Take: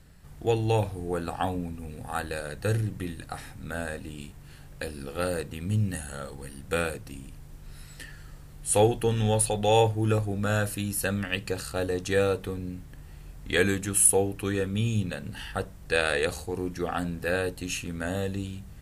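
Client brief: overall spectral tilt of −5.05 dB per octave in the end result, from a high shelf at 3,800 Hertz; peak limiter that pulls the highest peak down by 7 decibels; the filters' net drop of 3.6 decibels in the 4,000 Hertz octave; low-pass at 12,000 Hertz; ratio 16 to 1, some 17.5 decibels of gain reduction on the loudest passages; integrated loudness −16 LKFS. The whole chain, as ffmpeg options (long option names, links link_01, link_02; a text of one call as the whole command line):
ffmpeg -i in.wav -af "lowpass=12000,highshelf=frequency=3800:gain=4,equalizer=frequency=4000:width_type=o:gain=-7,acompressor=threshold=-31dB:ratio=16,volume=22.5dB,alimiter=limit=-4dB:level=0:latency=1" out.wav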